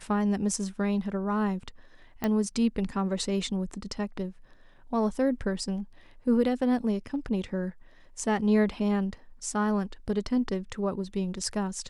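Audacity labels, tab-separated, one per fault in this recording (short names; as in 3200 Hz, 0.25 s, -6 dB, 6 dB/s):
2.240000	2.240000	pop -15 dBFS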